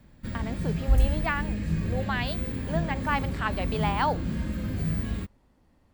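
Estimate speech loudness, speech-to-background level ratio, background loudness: −32.5 LKFS, −2.5 dB, −30.0 LKFS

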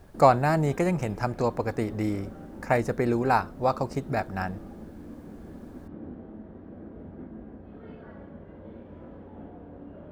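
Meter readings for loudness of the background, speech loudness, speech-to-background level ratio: −44.0 LKFS, −26.5 LKFS, 17.5 dB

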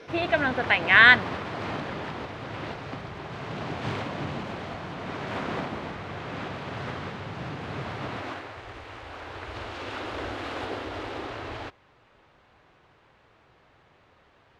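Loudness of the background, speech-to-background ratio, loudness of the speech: −35.0 LKFS, 16.5 dB, −18.5 LKFS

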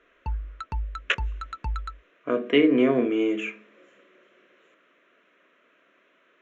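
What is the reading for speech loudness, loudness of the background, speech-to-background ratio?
−23.5 LKFS, −35.0 LKFS, 11.5 dB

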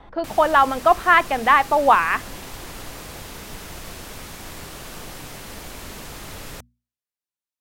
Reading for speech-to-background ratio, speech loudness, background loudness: 19.0 dB, −17.5 LKFS, −36.5 LKFS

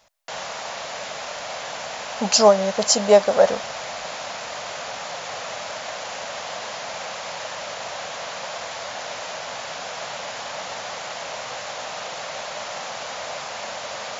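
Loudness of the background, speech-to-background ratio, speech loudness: −31.0 LKFS, 13.5 dB, −17.5 LKFS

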